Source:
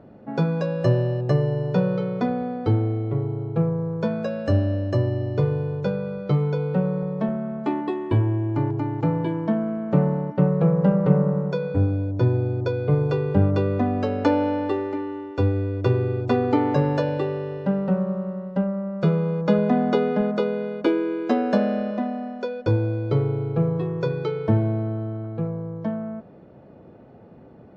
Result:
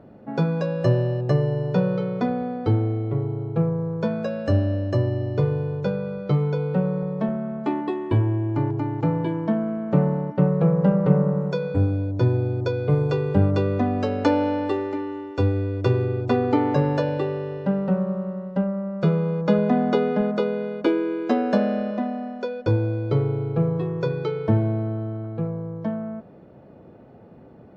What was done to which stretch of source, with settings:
0:11.41–0:16.06: high-shelf EQ 4,700 Hz +7 dB

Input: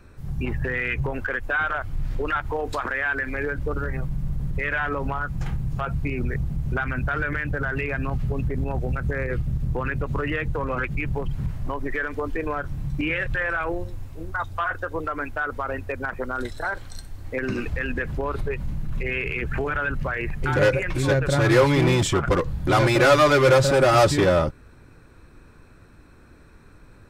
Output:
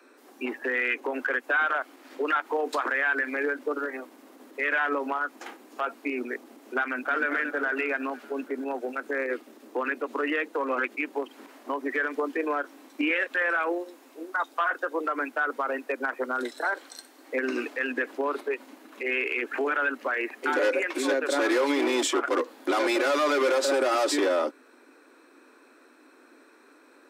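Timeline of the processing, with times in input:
0:06.82–0:07.27: delay throw 230 ms, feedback 60%, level −8.5 dB
whole clip: Butterworth high-pass 250 Hz 96 dB per octave; brickwall limiter −16 dBFS

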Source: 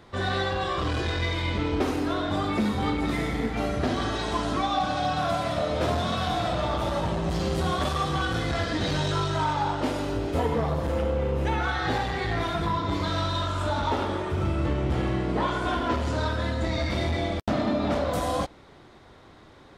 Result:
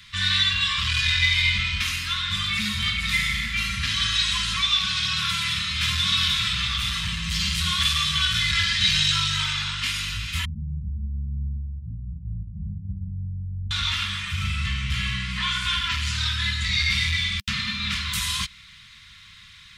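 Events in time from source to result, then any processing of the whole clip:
0:10.45–0:13.71: Butterworth low-pass 630 Hz 96 dB per octave
whole clip: Chebyshev band-stop filter 200–1,100 Hz, order 4; high shelf with overshoot 1,700 Hz +12 dB, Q 1.5; comb filter 2.9 ms, depth 31%

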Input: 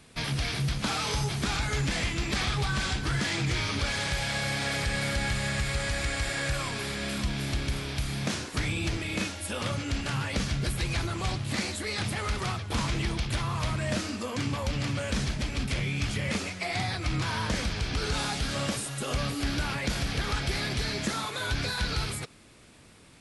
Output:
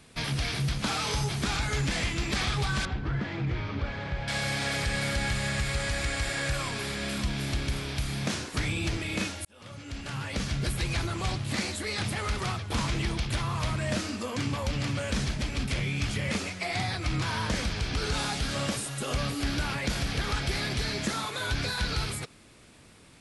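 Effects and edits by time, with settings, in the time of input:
0:02.85–0:04.28: head-to-tape spacing loss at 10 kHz 38 dB
0:09.45–0:10.65: fade in

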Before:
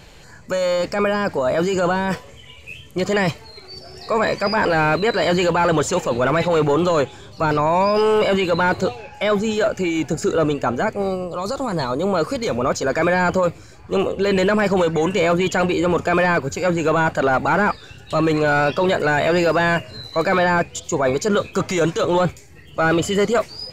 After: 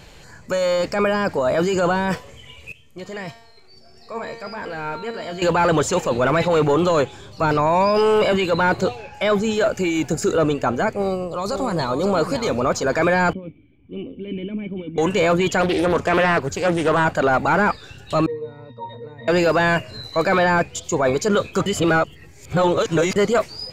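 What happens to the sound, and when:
0:02.72–0:05.42: tuned comb filter 230 Hz, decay 0.87 s, mix 80%
0:08.32–0:08.79: multiband upward and downward expander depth 40%
0:09.67–0:10.37: high-shelf EQ 8,400 Hz +6.5 dB
0:10.93–0:11.99: delay throw 550 ms, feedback 30%, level −8 dB
0:13.33–0:14.98: formant resonators in series i
0:15.61–0:17.05: highs frequency-modulated by the lows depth 0.38 ms
0:18.26–0:19.28: resonances in every octave A#, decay 0.27 s
0:21.66–0:23.16: reverse

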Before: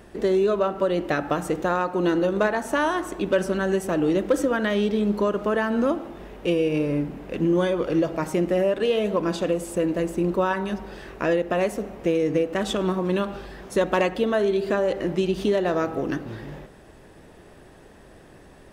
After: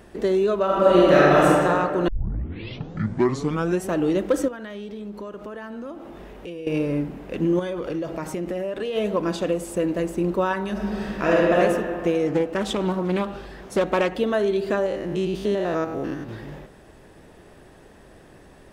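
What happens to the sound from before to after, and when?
0:00.65–0:01.46: thrown reverb, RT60 2.4 s, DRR −9.5 dB
0:02.08: tape start 1.79 s
0:04.48–0:06.67: downward compressor 3 to 1, threshold −36 dBFS
0:07.59–0:08.96: downward compressor, threshold −24 dBFS
0:10.71–0:11.55: thrown reverb, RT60 2.2 s, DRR −5 dB
0:12.27–0:14.14: highs frequency-modulated by the lows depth 0.29 ms
0:14.86–0:16.29: spectrum averaged block by block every 100 ms

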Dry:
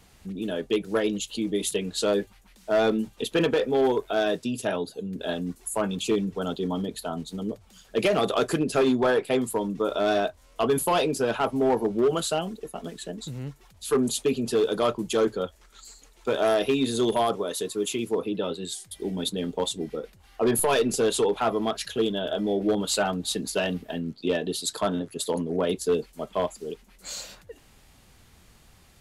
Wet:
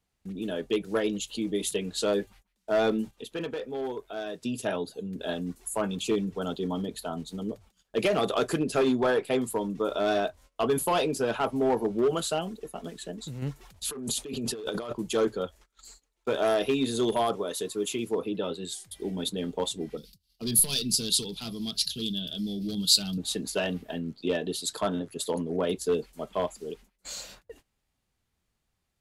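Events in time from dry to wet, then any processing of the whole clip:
0:03.11–0:04.42: clip gain −8.5 dB
0:13.42–0:14.93: compressor whose output falls as the input rises −31 dBFS
0:19.97–0:23.18: drawn EQ curve 110 Hz 0 dB, 170 Hz +6 dB, 360 Hz −12 dB, 570 Hz −20 dB, 900 Hz −21 dB, 1,800 Hz −16 dB, 4,700 Hz +15 dB, 6,800 Hz +3 dB, 13,000 Hz +11 dB
whole clip: noise gate −48 dBFS, range −21 dB; level −2.5 dB

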